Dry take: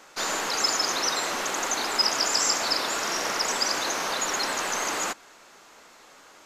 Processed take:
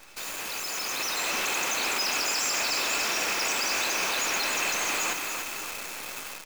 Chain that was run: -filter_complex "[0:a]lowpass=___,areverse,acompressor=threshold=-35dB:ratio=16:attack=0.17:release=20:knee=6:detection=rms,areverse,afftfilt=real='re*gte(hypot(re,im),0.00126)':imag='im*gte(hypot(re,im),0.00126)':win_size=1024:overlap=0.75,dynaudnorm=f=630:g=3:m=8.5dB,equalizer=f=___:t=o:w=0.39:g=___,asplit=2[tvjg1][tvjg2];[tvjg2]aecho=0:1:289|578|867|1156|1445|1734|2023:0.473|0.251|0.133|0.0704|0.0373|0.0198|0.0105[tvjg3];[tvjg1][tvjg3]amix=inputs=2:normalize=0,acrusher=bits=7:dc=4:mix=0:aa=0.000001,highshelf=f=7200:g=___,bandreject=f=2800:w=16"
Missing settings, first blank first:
11000, 2600, 13, 7.5